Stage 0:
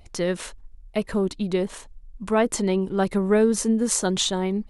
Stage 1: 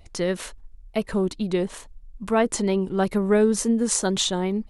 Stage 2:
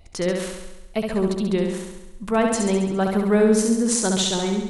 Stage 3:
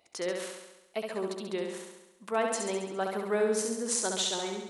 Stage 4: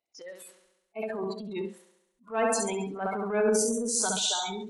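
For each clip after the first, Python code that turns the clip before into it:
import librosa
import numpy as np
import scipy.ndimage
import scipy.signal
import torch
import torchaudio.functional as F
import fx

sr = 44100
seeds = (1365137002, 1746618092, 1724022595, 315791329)

y1 = fx.wow_flutter(x, sr, seeds[0], rate_hz=2.1, depth_cents=48.0)
y2 = fx.room_flutter(y1, sr, wall_m=11.7, rt60_s=0.98)
y3 = scipy.signal.sosfilt(scipy.signal.butter(2, 390.0, 'highpass', fs=sr, output='sos'), y2)
y3 = y3 * librosa.db_to_amplitude(-7.0)
y4 = fx.noise_reduce_blind(y3, sr, reduce_db=25)
y4 = fx.transient(y4, sr, attack_db=-10, sustain_db=6)
y4 = y4 * librosa.db_to_amplitude(4.0)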